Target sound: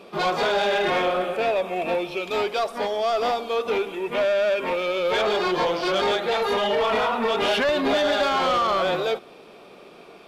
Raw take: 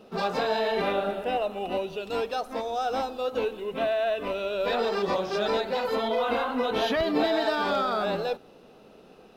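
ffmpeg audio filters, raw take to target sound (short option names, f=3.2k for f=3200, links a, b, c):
-filter_complex "[0:a]asetrate=40175,aresample=44100,asplit=2[a][b];[b]highpass=f=720:p=1,volume=16dB,asoftclip=type=tanh:threshold=-13.5dB[c];[a][c]amix=inputs=2:normalize=0,lowpass=f=7k:p=1,volume=-6dB"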